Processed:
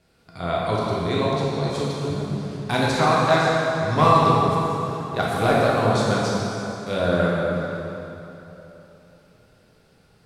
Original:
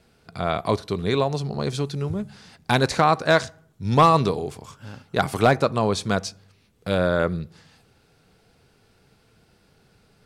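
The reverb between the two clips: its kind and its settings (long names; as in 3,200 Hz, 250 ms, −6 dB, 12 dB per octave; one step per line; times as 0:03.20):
dense smooth reverb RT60 3.3 s, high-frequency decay 0.75×, DRR −6 dB
level −5.5 dB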